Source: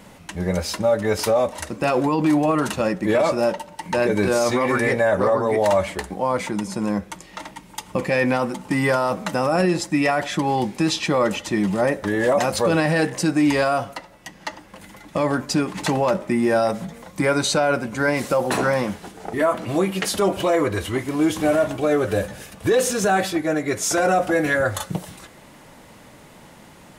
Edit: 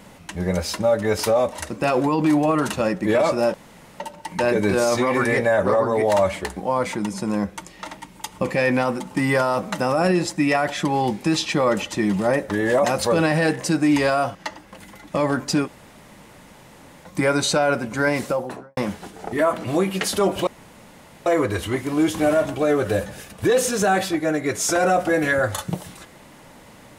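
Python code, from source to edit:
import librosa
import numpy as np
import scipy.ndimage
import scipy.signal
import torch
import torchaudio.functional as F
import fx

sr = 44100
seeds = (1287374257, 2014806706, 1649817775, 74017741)

y = fx.studio_fade_out(x, sr, start_s=18.12, length_s=0.66)
y = fx.edit(y, sr, fx.insert_room_tone(at_s=3.54, length_s=0.46),
    fx.cut(start_s=13.89, length_s=0.47),
    fx.room_tone_fill(start_s=15.68, length_s=1.38, crossfade_s=0.04),
    fx.insert_room_tone(at_s=20.48, length_s=0.79), tone=tone)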